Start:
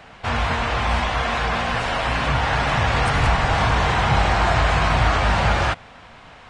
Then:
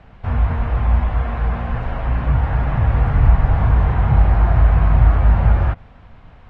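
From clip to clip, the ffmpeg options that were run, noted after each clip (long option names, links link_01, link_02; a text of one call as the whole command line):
ffmpeg -i in.wav -filter_complex "[0:a]aemphasis=mode=reproduction:type=riaa,acrossover=split=2500[link_01][link_02];[link_02]acompressor=threshold=-48dB:ratio=4:attack=1:release=60[link_03];[link_01][link_03]amix=inputs=2:normalize=0,volume=-7dB" out.wav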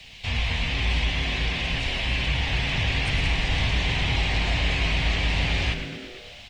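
ffmpeg -i in.wav -filter_complex "[0:a]acrossover=split=270|820[link_01][link_02][link_03];[link_01]alimiter=limit=-12dB:level=0:latency=1[link_04];[link_04][link_02][link_03]amix=inputs=3:normalize=0,aexciter=amount=15.5:drive=9.1:freq=2300,asplit=9[link_05][link_06][link_07][link_08][link_09][link_10][link_11][link_12][link_13];[link_06]adelay=115,afreqshift=-110,volume=-9dB[link_14];[link_07]adelay=230,afreqshift=-220,volume=-13.3dB[link_15];[link_08]adelay=345,afreqshift=-330,volume=-17.6dB[link_16];[link_09]adelay=460,afreqshift=-440,volume=-21.9dB[link_17];[link_10]adelay=575,afreqshift=-550,volume=-26.2dB[link_18];[link_11]adelay=690,afreqshift=-660,volume=-30.5dB[link_19];[link_12]adelay=805,afreqshift=-770,volume=-34.8dB[link_20];[link_13]adelay=920,afreqshift=-880,volume=-39.1dB[link_21];[link_05][link_14][link_15][link_16][link_17][link_18][link_19][link_20][link_21]amix=inputs=9:normalize=0,volume=-8.5dB" out.wav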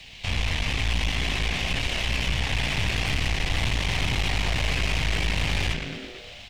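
ffmpeg -i in.wav -af "aeval=exprs='(tanh(22.4*val(0)+0.75)-tanh(0.75))/22.4':channel_layout=same,volume=5dB" out.wav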